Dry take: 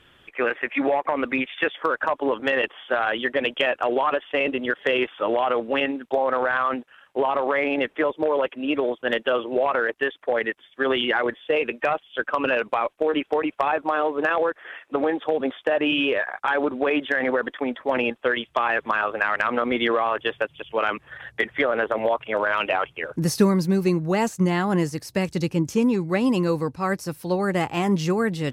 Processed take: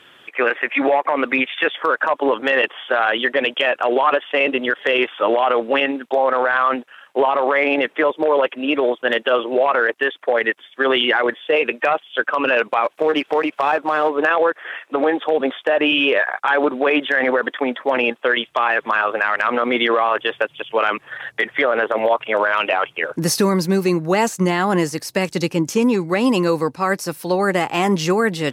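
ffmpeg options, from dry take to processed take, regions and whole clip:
-filter_complex "[0:a]asettb=1/sr,asplit=3[a][b][c];[a]atrim=end=12.844[d];[b]atrim=start=12.84:end=14.1,asetpts=PTS-STARTPTS,afade=t=in:d=0.004:c=qsin,afade=t=out:st=1.256:d=0.004:c=qsin,aeval=exprs='if(lt(val(0),0),0.708*val(0),val(0))':c=same,acompressor=mode=upward:threshold=-27dB:ratio=2.5:attack=3.2:release=140:knee=2.83:detection=peak[e];[c]atrim=start=14.096[f];[d][e]acrossfade=d=0.004:c1=hsin:c2=qsin[g];[g][f]acrossfade=d=0.004:c1=qsin:c2=hsin,highpass=130,lowshelf=f=240:g=-9.5,alimiter=limit=-15.5dB:level=0:latency=1:release=47,volume=8.5dB"

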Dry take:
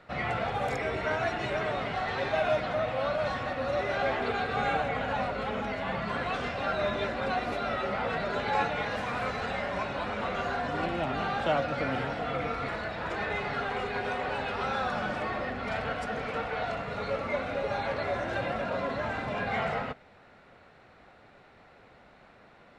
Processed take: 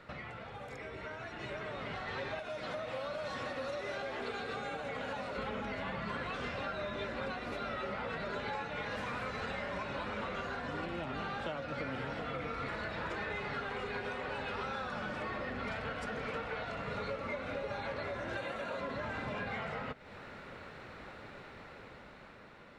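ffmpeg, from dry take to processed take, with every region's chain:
-filter_complex "[0:a]asettb=1/sr,asplit=3[a][b][c];[a]atrim=end=2.394[d];[b]atrim=start=2.39:end=5.38,asetpts=PTS-STARTPTS,afade=t=in:d=0.004:c=qsin,afade=t=out:st=2.986:d=0.004:c=qsin,acrossover=split=110|670[e][f][g];[e]acompressor=threshold=-52dB:ratio=4[h];[f]acompressor=threshold=-34dB:ratio=4[i];[g]acompressor=threshold=-37dB:ratio=4[j];[h][i][j]amix=inputs=3:normalize=0,bass=f=250:g=-5,treble=f=4k:g=8[k];[c]atrim=start=5.376[l];[d][k]acrossfade=d=0.004:c1=hsin:c2=qsin[m];[m][l]acrossfade=d=0.004:c1=qsin:c2=hsin,asettb=1/sr,asplit=3[n][o][p];[n]atrim=end=18.374[q];[o]atrim=start=18.37:end=18.81,asetpts=PTS-STARTPTS,afade=t=in:d=0.004:c=qsin,afade=t=out:st=0.436:d=0.004:c=qsin,bass=f=250:g=-8,treble=f=4k:g=6,bandreject=f=5.2k:w=5.1[r];[p]atrim=start=18.806[s];[q][r]acrossfade=d=0.004:c1=hsin:c2=qsin[t];[t][s]acrossfade=d=0.004:c1=qsin:c2=hsin,acompressor=threshold=-43dB:ratio=10,equalizer=f=720:w=5.5:g=-8,dynaudnorm=f=350:g=9:m=7dB,volume=1dB"

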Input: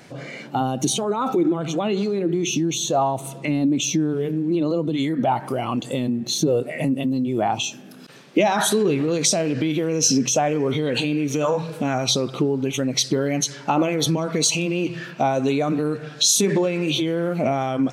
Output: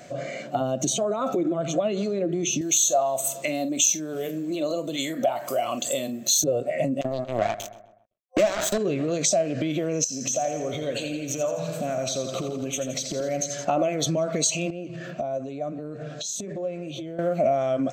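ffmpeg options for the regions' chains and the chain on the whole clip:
-filter_complex "[0:a]asettb=1/sr,asplit=3[a][b][c];[a]atrim=end=2.614[d];[b]atrim=start=2.61:end=6.44,asetpts=PTS-STARTPTS,afade=t=in:d=0.004:c=qsin,afade=t=out:st=3.826:d=0.004:c=qsin,aemphasis=mode=production:type=riaa,asplit=2[e][f];[f]adelay=45,volume=-13dB[g];[e][g]amix=inputs=2:normalize=0,atrim=end_sample=168903[h];[c]atrim=start=6.436[i];[d][h]acrossfade=d=0.004:c1=hsin:c2=qsin[j];[j][i]acrossfade=d=0.004:c1=qsin:c2=hsin,asettb=1/sr,asplit=3[k][l][m];[k]atrim=end=7.014[n];[l]atrim=start=7.01:end=8.78,asetpts=PTS-STARTPTS,afade=t=in:d=0.004:c=qsin,afade=t=out:st=1.766:d=0.004:c=qsin,acrusher=bits=2:mix=0:aa=0.5,asplit=2[o][p];[p]adelay=128,lowpass=f=1.9k:p=1,volume=-17dB,asplit=2[q][r];[r]adelay=128,lowpass=f=1.9k:p=1,volume=0.42,asplit=2[s][t];[t]adelay=128,lowpass=f=1.9k:p=1,volume=0.42,asplit=2[u][v];[v]adelay=128,lowpass=f=1.9k:p=1,volume=0.42[w];[o][q][s][u][w]amix=inputs=5:normalize=0,atrim=end_sample=78057[x];[m]atrim=start=8.776[y];[n][x]acrossfade=d=0.004:c1=hsin:c2=qsin[z];[z][y]acrossfade=d=0.004:c1=qsin:c2=hsin,asettb=1/sr,asplit=3[aa][ab][ac];[aa]atrim=end=10.044[ad];[ab]atrim=start=10.04:end=13.65,asetpts=PTS-STARTPTS,afade=t=in:d=0.004:c=qsin,afade=t=out:st=3.606:d=0.004:c=qsin,aemphasis=mode=production:type=cd,acompressor=threshold=-25dB:ratio=10:attack=3.2:release=140:knee=1:detection=peak,aecho=1:1:84|168|252|336|420|504|588:0.355|0.209|0.124|0.0729|0.043|0.0254|0.015,atrim=end_sample=159201[ae];[ac]atrim=start=13.646[af];[ad][ae]acrossfade=d=0.004:c1=hsin:c2=qsin[ag];[ag][af]acrossfade=d=0.004:c1=qsin:c2=hsin,asettb=1/sr,asplit=3[ah][ai][aj];[ah]atrim=end=14.704[ak];[ai]atrim=start=14.7:end=17.19,asetpts=PTS-STARTPTS,afade=t=in:d=0.004:c=qsin,afade=t=out:st=2.486:d=0.004:c=qsin,tiltshelf=f=800:g=4,acompressor=threshold=-29dB:ratio=16:attack=3.2:release=140:knee=1:detection=peak[al];[aj]atrim=start=17.186[am];[ak][al]acrossfade=d=0.004:c1=hsin:c2=qsin[an];[an][am]acrossfade=d=0.004:c1=qsin:c2=hsin,superequalizer=8b=3.55:9b=0.562:15b=2:16b=0.355,acompressor=threshold=-22dB:ratio=2,volume=-2dB"

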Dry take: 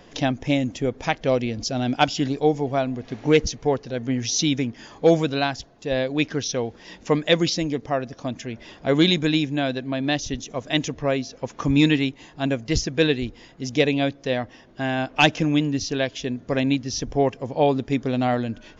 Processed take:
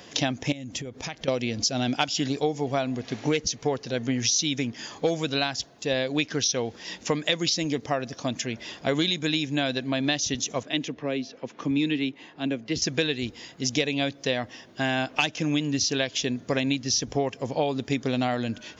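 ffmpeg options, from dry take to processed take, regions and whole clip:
-filter_complex "[0:a]asettb=1/sr,asplit=3[a][b][c];[a]atrim=end=0.524[d];[b]atrim=start=0.52:end=1.28,asetpts=PTS-STARTPTS,afade=t=in:d=0.004:c=qsin,afade=t=out:st=0.756:d=0.004:c=qsin,lowshelf=f=140:g=8.5,acompressor=threshold=-32dB:ratio=12:attack=3.2:release=140:knee=1:detection=peak[e];[c]atrim=start=1.276[f];[d][e]acrossfade=d=0.004:c1=hsin:c2=qsin[g];[g][f]acrossfade=d=0.004:c1=qsin:c2=hsin,asettb=1/sr,asplit=3[h][i][j];[h]atrim=end=10.634[k];[i]atrim=start=10.63:end=12.82,asetpts=PTS-STARTPTS,afade=t=in:d=0.004:c=qsin,afade=t=out:st=2.186:d=0.004:c=qsin,acrossover=split=190 3200:gain=0.2 1 0.0891[l][m][n];[l][m][n]amix=inputs=3:normalize=0,acrossover=split=400|3000[o][p][q];[p]acompressor=threshold=-56dB:ratio=1.5:attack=3.2:release=140:knee=2.83:detection=peak[r];[o][r][q]amix=inputs=3:normalize=0[s];[j]atrim=start=12.816[t];[k][s]acrossfade=d=0.004:c1=hsin:c2=qsin[u];[u][t]acrossfade=d=0.004:c1=qsin:c2=hsin,highpass=86,highshelf=f=2.5k:g=10.5,acompressor=threshold=-21dB:ratio=10"

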